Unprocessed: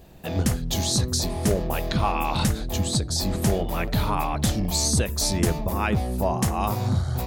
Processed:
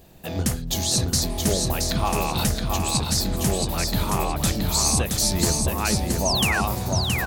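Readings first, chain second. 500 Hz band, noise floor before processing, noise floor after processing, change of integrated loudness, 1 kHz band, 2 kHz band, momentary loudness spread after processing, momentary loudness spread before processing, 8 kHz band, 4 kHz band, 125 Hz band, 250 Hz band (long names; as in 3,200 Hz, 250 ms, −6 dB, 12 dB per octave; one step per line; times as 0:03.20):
0.0 dB, −31 dBFS, −31 dBFS, +2.0 dB, +0.5 dB, +5.0 dB, 4 LU, 3 LU, +5.0 dB, +4.5 dB, −0.5 dB, 0.0 dB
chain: high-shelf EQ 4,100 Hz +6 dB
mains-hum notches 50/100 Hz
sound drawn into the spectrogram fall, 0:06.25–0:06.61, 1,300–6,800 Hz −23 dBFS
repeating echo 672 ms, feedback 29%, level −4 dB
level −1.5 dB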